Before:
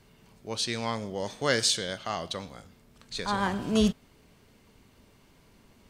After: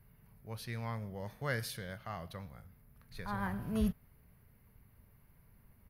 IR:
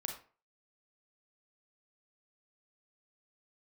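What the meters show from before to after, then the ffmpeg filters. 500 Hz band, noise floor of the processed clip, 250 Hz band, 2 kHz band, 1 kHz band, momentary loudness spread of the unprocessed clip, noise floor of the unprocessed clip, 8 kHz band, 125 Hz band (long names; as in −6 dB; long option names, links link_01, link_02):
−12.5 dB, −65 dBFS, −8.5 dB, −9.0 dB, −10.5 dB, 14 LU, −60 dBFS, −19.0 dB, −2.5 dB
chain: -af "firequalizer=gain_entry='entry(120,0);entry(290,-16);entry(500,-12);entry(1900,-8);entry(3200,-21);entry(4900,-19);entry(7700,-28);entry(11000,3)':delay=0.05:min_phase=1"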